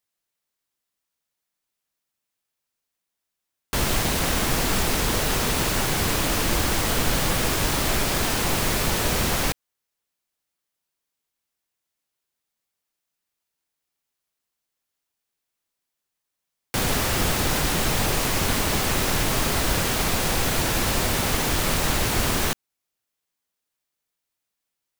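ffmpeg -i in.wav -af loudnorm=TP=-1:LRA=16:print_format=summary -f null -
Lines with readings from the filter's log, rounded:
Input Integrated:    -22.6 LUFS
Input True Peak:      -9.1 dBTP
Input LRA:             8.4 LU
Input Threshold:     -32.8 LUFS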